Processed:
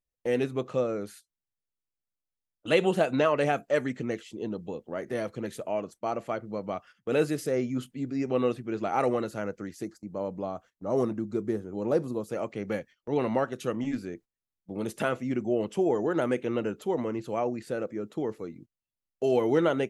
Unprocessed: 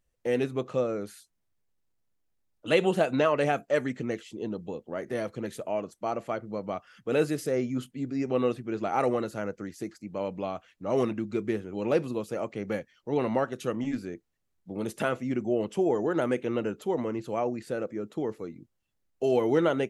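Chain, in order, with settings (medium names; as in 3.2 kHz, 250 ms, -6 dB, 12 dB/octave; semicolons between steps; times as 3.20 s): gate -48 dBFS, range -15 dB; 9.85–12.30 s: peaking EQ 2.6 kHz -14 dB 1.1 oct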